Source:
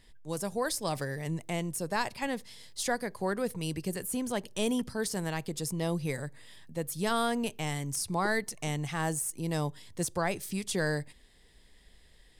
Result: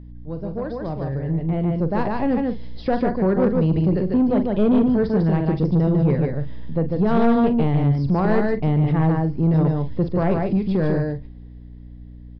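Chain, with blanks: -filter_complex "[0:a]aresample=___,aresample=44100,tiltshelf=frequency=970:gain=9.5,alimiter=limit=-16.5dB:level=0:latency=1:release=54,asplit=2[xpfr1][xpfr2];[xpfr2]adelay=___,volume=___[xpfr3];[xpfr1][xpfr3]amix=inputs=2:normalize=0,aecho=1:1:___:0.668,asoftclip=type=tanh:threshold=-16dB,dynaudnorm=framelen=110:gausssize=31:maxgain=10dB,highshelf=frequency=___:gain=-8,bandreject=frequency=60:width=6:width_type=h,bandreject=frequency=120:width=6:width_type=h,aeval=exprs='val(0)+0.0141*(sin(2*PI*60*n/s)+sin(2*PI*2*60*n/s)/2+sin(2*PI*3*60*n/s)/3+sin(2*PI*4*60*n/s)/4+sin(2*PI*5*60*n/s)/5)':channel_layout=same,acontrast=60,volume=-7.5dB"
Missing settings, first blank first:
11025, 43, -11dB, 147, 2700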